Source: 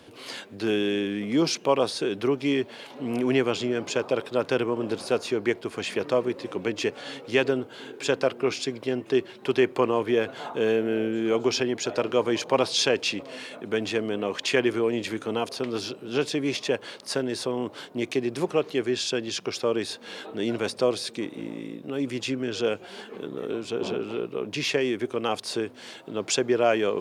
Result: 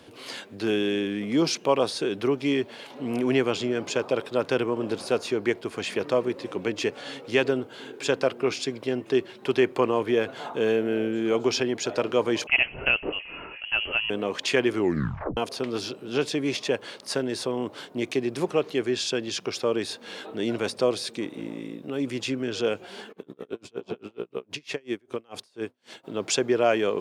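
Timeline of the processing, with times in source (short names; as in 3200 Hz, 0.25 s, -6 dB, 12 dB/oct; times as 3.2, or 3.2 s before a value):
12.47–14.1 inverted band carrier 3100 Hz
14.75 tape stop 0.62 s
23.11–26.03 dB-linear tremolo 10 Hz -> 3.1 Hz, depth 35 dB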